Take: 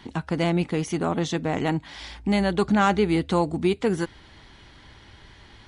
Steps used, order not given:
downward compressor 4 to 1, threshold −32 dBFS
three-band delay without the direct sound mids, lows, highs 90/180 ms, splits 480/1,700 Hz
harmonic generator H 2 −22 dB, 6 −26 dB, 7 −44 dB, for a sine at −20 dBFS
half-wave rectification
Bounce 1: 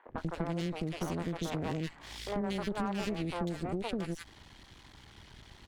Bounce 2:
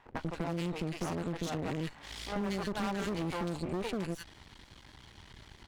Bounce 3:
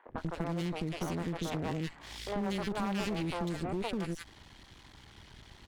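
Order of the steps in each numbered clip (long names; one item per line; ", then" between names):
half-wave rectification, then three-band delay without the direct sound, then downward compressor, then harmonic generator
three-band delay without the direct sound, then half-wave rectification, then harmonic generator, then downward compressor
half-wave rectification, then three-band delay without the direct sound, then harmonic generator, then downward compressor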